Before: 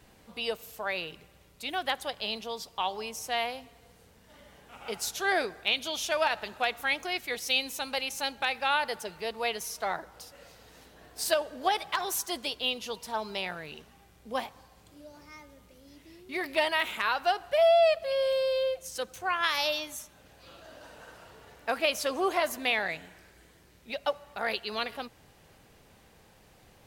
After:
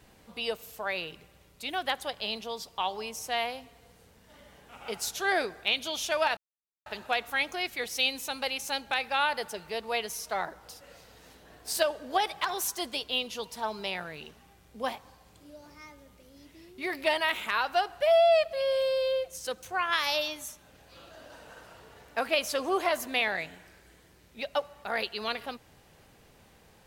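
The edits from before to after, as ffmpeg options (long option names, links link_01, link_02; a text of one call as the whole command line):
ffmpeg -i in.wav -filter_complex "[0:a]asplit=2[link_01][link_02];[link_01]atrim=end=6.37,asetpts=PTS-STARTPTS,afade=type=out:start_time=6.366:duration=0.004:curve=hsin,apad=pad_dur=0.49[link_03];[link_02]atrim=start=6.37,asetpts=PTS-STARTPTS,afade=type=in:duration=0.004:curve=hsin[link_04];[link_03][link_04]concat=n=2:v=0:a=1" out.wav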